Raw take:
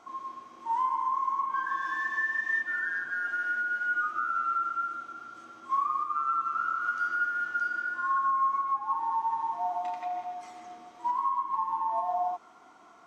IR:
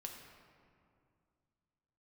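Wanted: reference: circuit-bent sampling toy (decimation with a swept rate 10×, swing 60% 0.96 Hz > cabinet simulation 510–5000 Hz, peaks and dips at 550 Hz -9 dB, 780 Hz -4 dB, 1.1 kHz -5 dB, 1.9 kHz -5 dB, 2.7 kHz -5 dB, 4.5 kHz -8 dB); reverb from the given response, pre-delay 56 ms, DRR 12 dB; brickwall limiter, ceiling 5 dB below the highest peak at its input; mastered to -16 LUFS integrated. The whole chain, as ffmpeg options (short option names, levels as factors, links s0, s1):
-filter_complex "[0:a]alimiter=limit=0.0631:level=0:latency=1,asplit=2[s0][s1];[1:a]atrim=start_sample=2205,adelay=56[s2];[s1][s2]afir=irnorm=-1:irlink=0,volume=0.376[s3];[s0][s3]amix=inputs=2:normalize=0,acrusher=samples=10:mix=1:aa=0.000001:lfo=1:lforange=6:lforate=0.96,highpass=510,equalizer=f=550:t=q:w=4:g=-9,equalizer=f=780:t=q:w=4:g=-4,equalizer=f=1100:t=q:w=4:g=-5,equalizer=f=1900:t=q:w=4:g=-5,equalizer=f=2700:t=q:w=4:g=-5,equalizer=f=4500:t=q:w=4:g=-8,lowpass=f=5000:w=0.5412,lowpass=f=5000:w=1.3066,volume=8.41"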